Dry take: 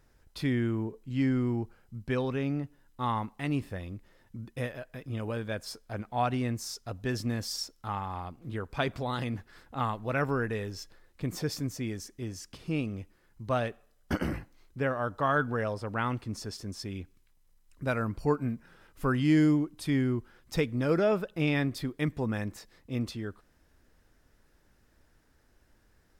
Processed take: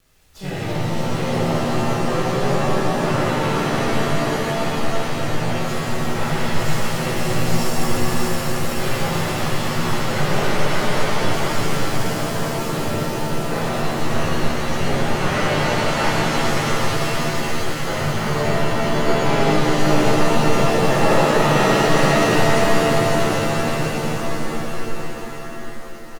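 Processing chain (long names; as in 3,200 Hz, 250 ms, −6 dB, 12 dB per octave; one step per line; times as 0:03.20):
lower of the sound and its delayed copy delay 2 ms
surface crackle 460 per second −49 dBFS
bouncing-ball delay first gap 580 ms, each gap 0.9×, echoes 5
pitch-shifted copies added −3 semitones −7 dB, +5 semitones −2 dB
reverb with rising layers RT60 3.9 s, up +7 semitones, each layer −2 dB, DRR −8.5 dB
level −4.5 dB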